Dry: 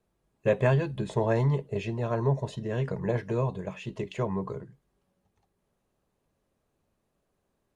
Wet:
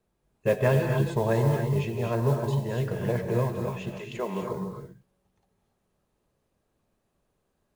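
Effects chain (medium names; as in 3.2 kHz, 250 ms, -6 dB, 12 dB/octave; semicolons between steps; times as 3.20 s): 3.98–4.41 s: high-pass 550 Hz -> 140 Hz 24 dB/octave; modulation noise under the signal 26 dB; gated-style reverb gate 310 ms rising, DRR 3 dB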